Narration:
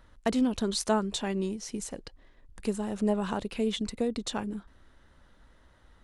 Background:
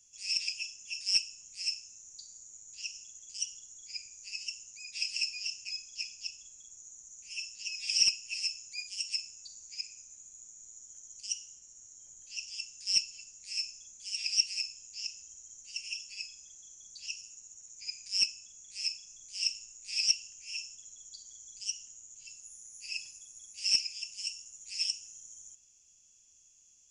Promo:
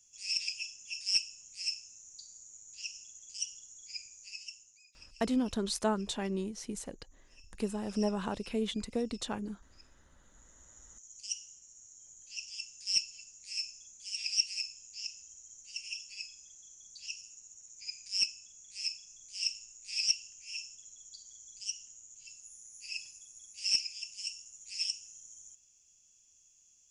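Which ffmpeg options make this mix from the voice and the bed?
-filter_complex "[0:a]adelay=4950,volume=0.631[s0];[1:a]volume=8.41,afade=t=out:st=4.02:d=0.91:silence=0.0944061,afade=t=in:st=10.2:d=1:silence=0.1[s1];[s0][s1]amix=inputs=2:normalize=0"

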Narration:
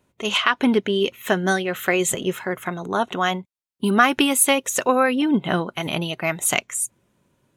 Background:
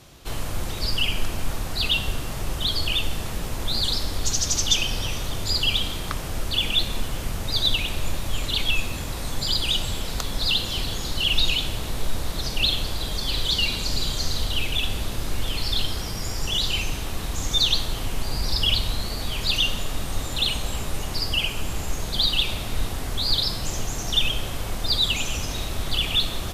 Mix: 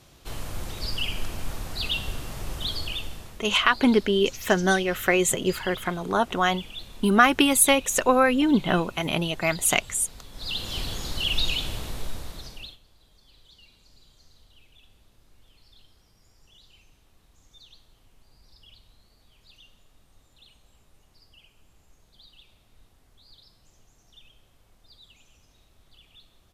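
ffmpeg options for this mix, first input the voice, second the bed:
-filter_complex "[0:a]adelay=3200,volume=0.891[s0];[1:a]volume=2.37,afade=t=out:st=2.69:d=0.71:silence=0.266073,afade=t=in:st=10.32:d=0.45:silence=0.223872,afade=t=out:st=11.75:d=1.03:silence=0.0398107[s1];[s0][s1]amix=inputs=2:normalize=0"

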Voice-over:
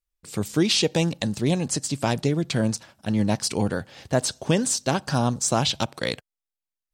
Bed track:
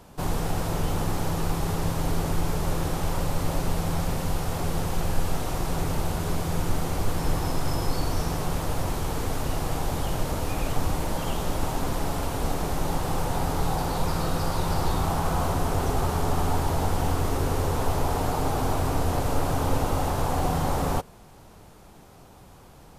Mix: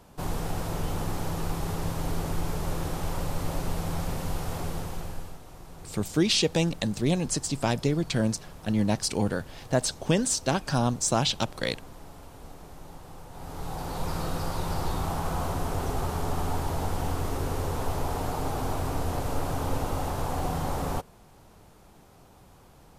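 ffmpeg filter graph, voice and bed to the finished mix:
-filter_complex "[0:a]adelay=5600,volume=0.75[s0];[1:a]volume=3.16,afade=t=out:st=4.55:d=0.84:silence=0.188365,afade=t=in:st=13.31:d=0.83:silence=0.199526[s1];[s0][s1]amix=inputs=2:normalize=0"

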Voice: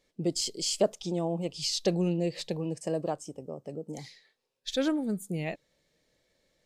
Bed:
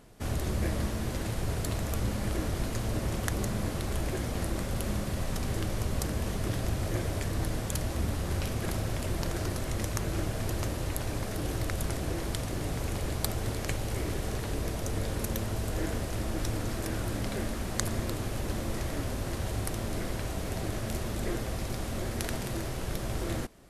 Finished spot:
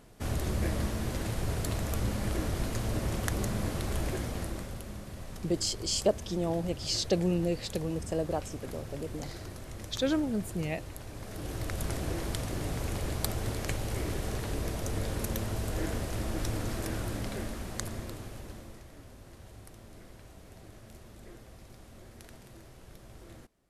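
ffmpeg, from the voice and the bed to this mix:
-filter_complex "[0:a]adelay=5250,volume=0.944[s0];[1:a]volume=2.82,afade=t=out:st=4.07:d=0.78:silence=0.316228,afade=t=in:st=11.13:d=0.82:silence=0.334965,afade=t=out:st=16.8:d=2.04:silence=0.149624[s1];[s0][s1]amix=inputs=2:normalize=0"

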